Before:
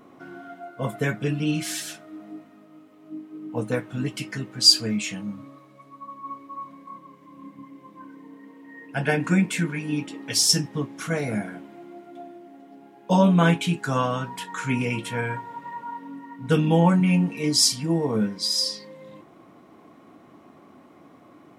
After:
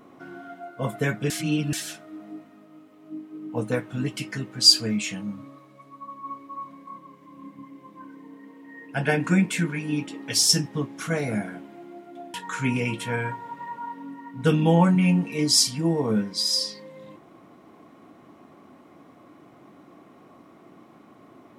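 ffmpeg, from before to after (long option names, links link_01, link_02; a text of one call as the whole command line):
ffmpeg -i in.wav -filter_complex "[0:a]asplit=4[link_01][link_02][link_03][link_04];[link_01]atrim=end=1.302[link_05];[link_02]atrim=start=1.298:end=1.732,asetpts=PTS-STARTPTS,areverse[link_06];[link_03]atrim=start=1.728:end=12.342[link_07];[link_04]atrim=start=14.388[link_08];[link_05][link_06]acrossfade=duration=0.004:curve1=hsin:curve2=hsin[link_09];[link_09][link_07]acrossfade=duration=0.004:curve1=hsin:curve2=hsin[link_10];[link_10][link_08]acrossfade=duration=0.004:curve1=hsin:curve2=hsin" out.wav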